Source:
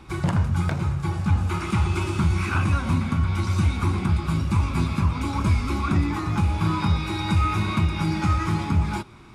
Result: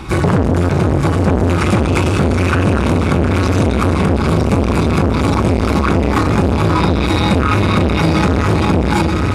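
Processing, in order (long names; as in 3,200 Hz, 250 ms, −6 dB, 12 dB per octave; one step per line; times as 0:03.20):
feedback delay with all-pass diffusion 935 ms, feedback 46%, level −8 dB
boost into a limiter +17.5 dB
saturating transformer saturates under 380 Hz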